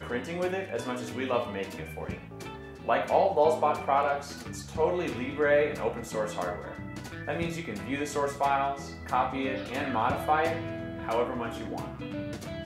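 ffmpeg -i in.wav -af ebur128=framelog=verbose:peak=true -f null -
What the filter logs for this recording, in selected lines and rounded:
Integrated loudness:
  I:         -30.0 LUFS
  Threshold: -40.1 LUFS
Loudness range:
  LRA:         4.4 LU
  Threshold: -49.6 LUFS
  LRA low:   -31.6 LUFS
  LRA high:  -27.2 LUFS
True peak:
  Peak:      -10.3 dBFS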